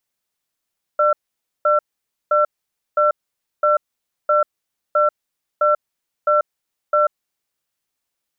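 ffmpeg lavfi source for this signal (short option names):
-f lavfi -i "aevalsrc='0.178*(sin(2*PI*598*t)+sin(2*PI*1350*t))*clip(min(mod(t,0.66),0.14-mod(t,0.66))/0.005,0,1)':d=6.26:s=44100"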